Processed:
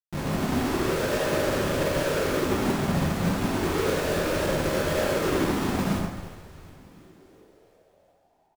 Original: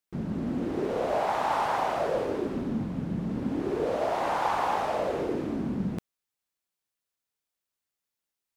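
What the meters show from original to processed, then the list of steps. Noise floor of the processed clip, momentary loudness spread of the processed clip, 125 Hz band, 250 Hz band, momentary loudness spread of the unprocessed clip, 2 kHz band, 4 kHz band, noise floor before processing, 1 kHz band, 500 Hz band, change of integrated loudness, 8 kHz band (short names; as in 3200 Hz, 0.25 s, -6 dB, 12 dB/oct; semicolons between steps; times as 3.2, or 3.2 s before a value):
-65 dBFS, 3 LU, +7.5 dB, +4.5 dB, 5 LU, +7.5 dB, +10.5 dB, under -85 dBFS, -2.5 dB, +4.0 dB, +3.5 dB, +15.0 dB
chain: FFT band-reject 630–6400 Hz; high shelf 3500 Hz -4.5 dB; Schmitt trigger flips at -43 dBFS; frequency-shifting echo 0.354 s, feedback 63%, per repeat -130 Hz, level -11.5 dB; plate-style reverb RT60 1.2 s, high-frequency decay 0.55×, DRR -3 dB; upward expander 1.5:1, over -41 dBFS; gain +4 dB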